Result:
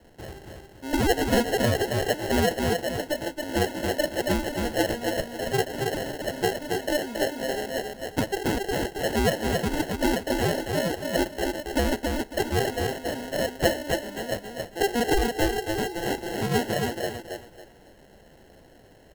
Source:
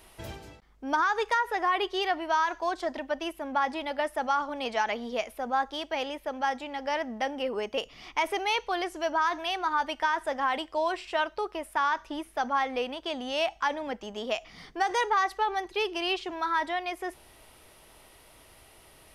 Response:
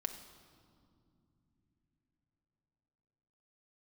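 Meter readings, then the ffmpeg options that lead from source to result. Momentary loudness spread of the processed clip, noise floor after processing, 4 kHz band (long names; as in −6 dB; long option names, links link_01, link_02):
8 LU, −53 dBFS, +3.0 dB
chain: -af "equalizer=frequency=1700:width_type=o:width=0.25:gain=12.5,acrusher=samples=37:mix=1:aa=0.000001,aecho=1:1:275|550|825|1100:0.631|0.17|0.046|0.0124"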